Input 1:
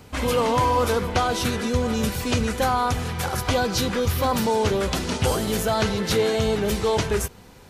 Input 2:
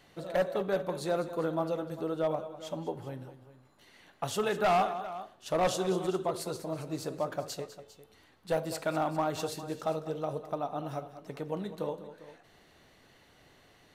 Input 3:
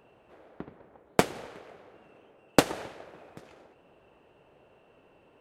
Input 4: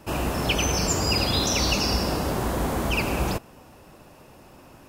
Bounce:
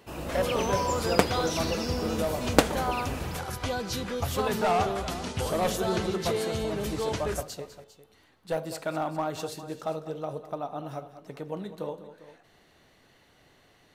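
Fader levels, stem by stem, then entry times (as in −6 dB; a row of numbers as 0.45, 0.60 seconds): −9.0, 0.0, +0.5, −12.0 decibels; 0.15, 0.00, 0.00, 0.00 seconds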